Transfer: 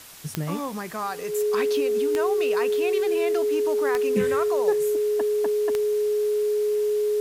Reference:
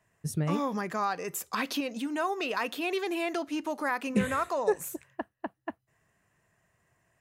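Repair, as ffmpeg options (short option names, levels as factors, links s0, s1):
-af "adeclick=t=4,bandreject=f=420:w=30,afwtdn=0.0063"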